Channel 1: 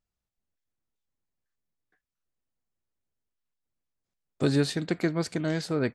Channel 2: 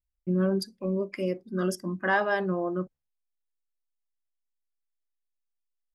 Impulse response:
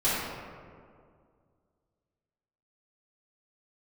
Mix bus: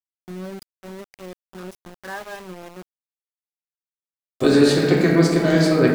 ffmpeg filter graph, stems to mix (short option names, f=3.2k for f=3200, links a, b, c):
-filter_complex "[0:a]equalizer=f=130:t=o:w=0.77:g=-5.5,volume=-1dB,asplit=2[a][b];[b]volume=-5dB[c];[1:a]volume=-13dB[d];[2:a]atrim=start_sample=2205[e];[c][e]afir=irnorm=-1:irlink=0[f];[a][d][f]amix=inputs=3:normalize=0,dynaudnorm=f=100:g=3:m=5dB,aeval=exprs='val(0)*gte(abs(val(0)),0.0168)':c=same"